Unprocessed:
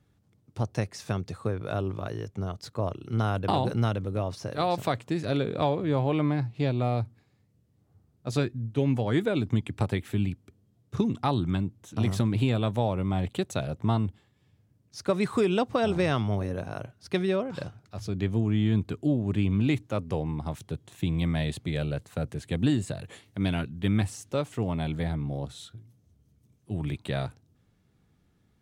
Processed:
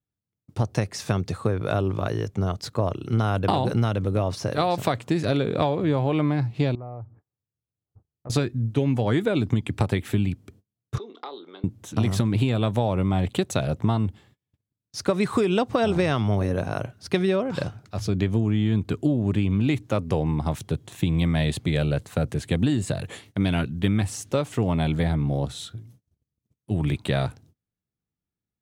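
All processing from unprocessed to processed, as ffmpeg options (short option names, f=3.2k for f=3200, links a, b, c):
-filter_complex "[0:a]asettb=1/sr,asplit=3[a][b][c];[a]atrim=end=6.754[d];[b]atrim=start=6.75:end=8.3,asetpts=PTS-STARTPTS,afade=t=in:d=0.004:c=qsin,afade=t=out:st=1.546:d=0.004:c=qsin,lowpass=f=1.3k:w=0.5412,lowpass=f=1.3k:w=1.3066,acompressor=threshold=-45dB:ratio=3:attack=3.2:release=140:knee=1:detection=peak,equalizer=f=220:w=2.4:g=-7.5[e];[c]atrim=start=8.296[f];[d][e]acrossfade=d=0.004:c1=hsin:c2=qsin[g];[g][f]acrossfade=d=0.004:c1=qsin:c2=hsin,asettb=1/sr,asplit=3[h][i][j];[h]atrim=end=10.984[k];[i]atrim=start=10.98:end=11.64,asetpts=PTS-STARTPTS,afade=t=in:d=0.004:c=qsin,afade=t=out:st=0.656:d=0.004:c=qsin,acompressor=threshold=-36dB:ratio=8:attack=3.2:release=140:knee=1:detection=peak,highpass=f=390:w=0.5412,highpass=f=390:w=1.3066,equalizer=f=420:t=q:w=4:g=6,equalizer=f=640:t=q:w=4:g=-5,equalizer=f=940:t=q:w=4:g=-4,equalizer=f=1.7k:t=q:w=4:g=-7,equalizer=f=2.6k:t=q:w=4:g=-9,equalizer=f=3.8k:t=q:w=4:g=5,lowpass=f=4.1k:w=0.5412,lowpass=f=4.1k:w=1.3066,asplit=2[l][m];[m]adelay=27,volume=-13dB[n];[l][n]amix=inputs=2:normalize=0,atrim=end_sample=29106[o];[j]atrim=start=11.636[p];[k][o]acrossfade=d=0.004:c1=hsin:c2=qsin[q];[q][p]acrossfade=d=0.004:c1=qsin:c2=hsin,agate=range=-31dB:threshold=-58dB:ratio=16:detection=peak,acompressor=threshold=-26dB:ratio=6,volume=8dB"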